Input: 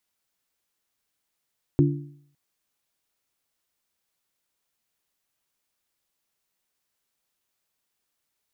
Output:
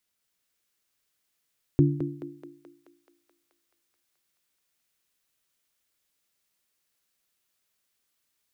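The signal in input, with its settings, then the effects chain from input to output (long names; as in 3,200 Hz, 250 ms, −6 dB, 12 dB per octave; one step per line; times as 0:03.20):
struck metal bell, length 0.56 s, lowest mode 144 Hz, modes 3, decay 0.64 s, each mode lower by 2 dB, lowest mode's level −15 dB
parametric band 850 Hz −5 dB 0.83 octaves
on a send: feedback echo with a high-pass in the loop 215 ms, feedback 75%, high-pass 430 Hz, level −4 dB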